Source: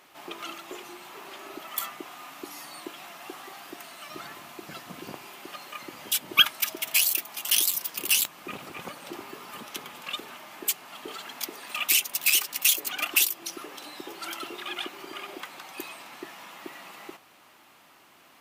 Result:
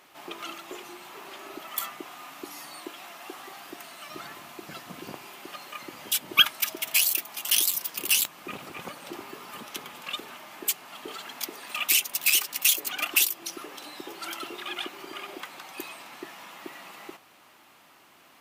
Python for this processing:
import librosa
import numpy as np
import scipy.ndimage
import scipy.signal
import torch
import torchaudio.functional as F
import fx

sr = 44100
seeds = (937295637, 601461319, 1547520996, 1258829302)

y = fx.highpass(x, sr, hz=190.0, slope=12, at=(2.76, 3.39))